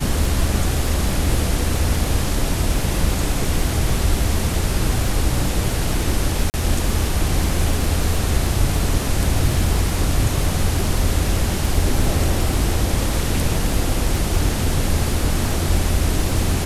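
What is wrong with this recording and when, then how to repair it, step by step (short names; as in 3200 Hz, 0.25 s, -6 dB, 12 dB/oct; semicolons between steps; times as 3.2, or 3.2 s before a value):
crackle 24/s -22 dBFS
6.5–6.54 gap 39 ms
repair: de-click; interpolate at 6.5, 39 ms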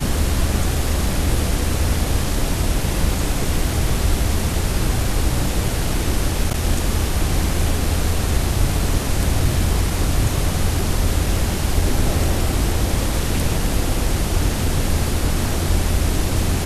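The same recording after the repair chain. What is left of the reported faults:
none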